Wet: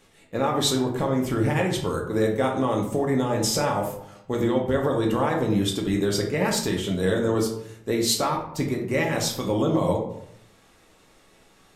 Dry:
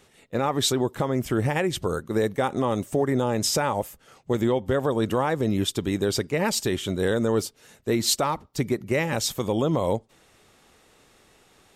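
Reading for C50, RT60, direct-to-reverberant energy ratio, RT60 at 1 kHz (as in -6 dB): 6.0 dB, 0.75 s, -0.5 dB, 0.75 s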